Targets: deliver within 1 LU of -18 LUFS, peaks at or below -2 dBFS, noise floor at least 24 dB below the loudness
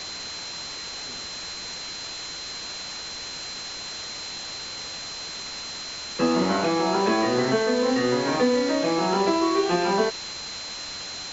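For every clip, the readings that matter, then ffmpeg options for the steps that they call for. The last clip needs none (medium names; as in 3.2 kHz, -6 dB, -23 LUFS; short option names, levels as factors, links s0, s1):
steady tone 4.1 kHz; tone level -35 dBFS; noise floor -36 dBFS; noise floor target -50 dBFS; loudness -26.0 LUFS; peak level -9.0 dBFS; loudness target -18.0 LUFS
-> -af "bandreject=f=4100:w=30"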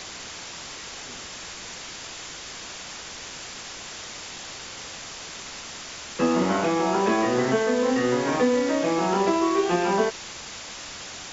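steady tone not found; noise floor -39 dBFS; noise floor target -51 dBFS
-> -af "afftdn=nr=12:nf=-39"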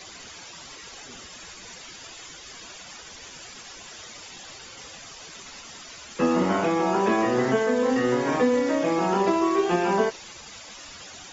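noise floor -44 dBFS; noise floor target -47 dBFS
-> -af "afftdn=nr=6:nf=-44"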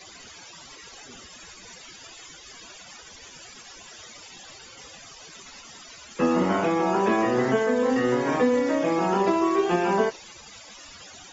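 noise floor -47 dBFS; loudness -23.0 LUFS; peak level -10.0 dBFS; loudness target -18.0 LUFS
-> -af "volume=1.78"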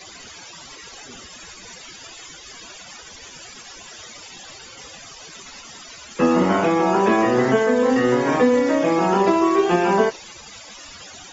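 loudness -18.0 LUFS; peak level -5.0 dBFS; noise floor -42 dBFS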